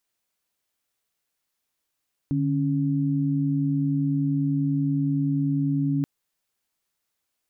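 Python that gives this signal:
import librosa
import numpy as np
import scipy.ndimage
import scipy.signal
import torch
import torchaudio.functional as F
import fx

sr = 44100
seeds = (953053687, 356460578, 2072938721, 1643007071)

y = fx.chord(sr, length_s=3.73, notes=(50, 61), wave='sine', level_db=-23.5)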